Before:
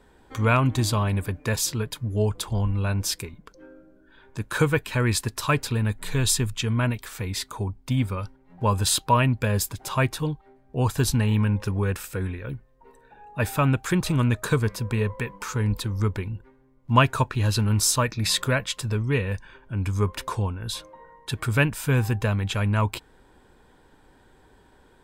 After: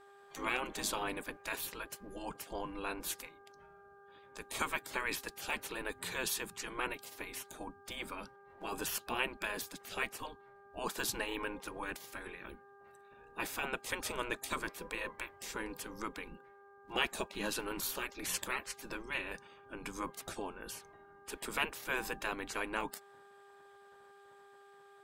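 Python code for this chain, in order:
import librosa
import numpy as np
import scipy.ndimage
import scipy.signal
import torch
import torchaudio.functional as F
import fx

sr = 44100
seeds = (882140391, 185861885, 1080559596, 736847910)

y = fx.spec_gate(x, sr, threshold_db=-15, keep='weak')
y = fx.dmg_buzz(y, sr, base_hz=400.0, harmonics=4, level_db=-55.0, tilt_db=-3, odd_only=False)
y = F.gain(torch.from_numpy(y), -4.5).numpy()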